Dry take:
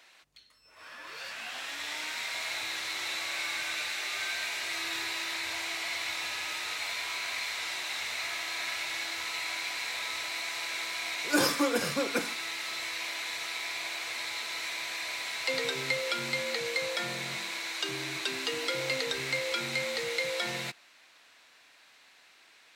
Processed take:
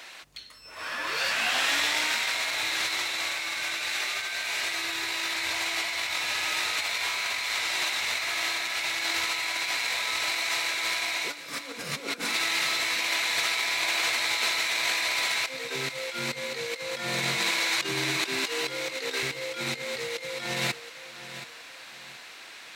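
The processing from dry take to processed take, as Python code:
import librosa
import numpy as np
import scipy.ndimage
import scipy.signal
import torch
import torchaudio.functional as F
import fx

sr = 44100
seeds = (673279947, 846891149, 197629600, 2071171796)

p1 = fx.highpass(x, sr, hz=410.0, slope=12, at=(18.44, 19.23))
p2 = fx.over_compress(p1, sr, threshold_db=-38.0, ratio=-0.5)
p3 = p2 + fx.echo_feedback(p2, sr, ms=725, feedback_pct=31, wet_db=-13.5, dry=0)
y = F.gain(torch.from_numpy(p3), 9.0).numpy()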